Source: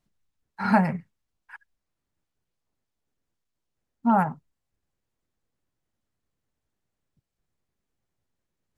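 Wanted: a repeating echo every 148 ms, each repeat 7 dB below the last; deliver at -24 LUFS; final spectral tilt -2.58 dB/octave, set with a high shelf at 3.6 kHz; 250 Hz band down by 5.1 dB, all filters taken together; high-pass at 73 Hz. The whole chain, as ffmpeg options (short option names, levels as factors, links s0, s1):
-af "highpass=73,equalizer=f=250:t=o:g=-6.5,highshelf=f=3600:g=-4,aecho=1:1:148|296|444|592|740:0.447|0.201|0.0905|0.0407|0.0183,volume=1.41"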